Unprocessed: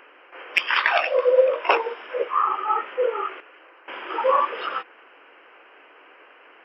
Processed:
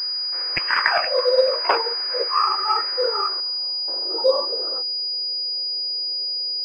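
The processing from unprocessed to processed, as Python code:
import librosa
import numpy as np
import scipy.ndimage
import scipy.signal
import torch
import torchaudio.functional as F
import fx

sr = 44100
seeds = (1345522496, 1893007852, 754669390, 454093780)

y = fx.filter_sweep_lowpass(x, sr, from_hz=1900.0, to_hz=540.0, start_s=2.89, end_s=4.09, q=1.8)
y = fx.pwm(y, sr, carrier_hz=4900.0)
y = y * librosa.db_to_amplitude(-1.5)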